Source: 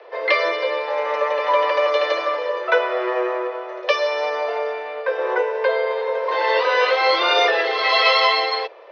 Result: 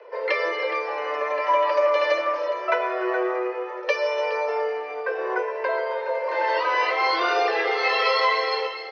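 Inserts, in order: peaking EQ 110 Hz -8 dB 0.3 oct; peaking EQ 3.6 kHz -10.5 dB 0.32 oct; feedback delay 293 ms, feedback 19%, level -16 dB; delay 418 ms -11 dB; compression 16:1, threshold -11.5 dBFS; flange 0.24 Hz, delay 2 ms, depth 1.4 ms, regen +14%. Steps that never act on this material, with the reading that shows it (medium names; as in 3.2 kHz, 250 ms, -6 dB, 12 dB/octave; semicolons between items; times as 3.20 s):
peaking EQ 110 Hz: input has nothing below 290 Hz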